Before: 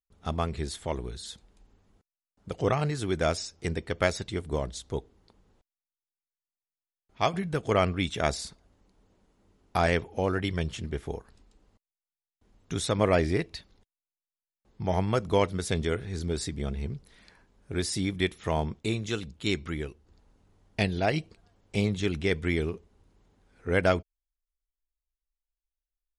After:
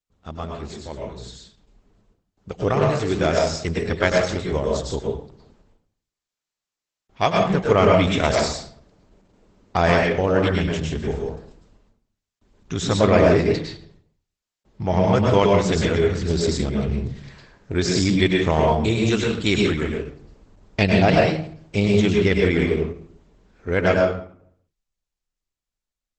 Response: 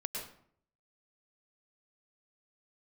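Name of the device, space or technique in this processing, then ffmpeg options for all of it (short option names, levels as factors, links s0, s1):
speakerphone in a meeting room: -filter_complex "[1:a]atrim=start_sample=2205[s0];[0:a][s0]afir=irnorm=-1:irlink=0,dynaudnorm=f=210:g=21:m=5.01,volume=0.891" -ar 48000 -c:a libopus -b:a 12k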